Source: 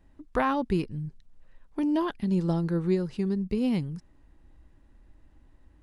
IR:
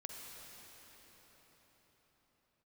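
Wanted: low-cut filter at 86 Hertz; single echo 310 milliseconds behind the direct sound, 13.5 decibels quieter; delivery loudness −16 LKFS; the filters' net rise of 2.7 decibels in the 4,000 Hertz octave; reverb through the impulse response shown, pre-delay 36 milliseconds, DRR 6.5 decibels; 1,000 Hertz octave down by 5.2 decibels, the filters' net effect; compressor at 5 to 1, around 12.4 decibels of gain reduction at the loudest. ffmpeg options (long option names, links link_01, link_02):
-filter_complex "[0:a]highpass=86,equalizer=frequency=1000:width_type=o:gain=-6.5,equalizer=frequency=4000:width_type=o:gain=4,acompressor=threshold=-36dB:ratio=5,aecho=1:1:310:0.211,asplit=2[link_01][link_02];[1:a]atrim=start_sample=2205,adelay=36[link_03];[link_02][link_03]afir=irnorm=-1:irlink=0,volume=-4dB[link_04];[link_01][link_04]amix=inputs=2:normalize=0,volume=22.5dB"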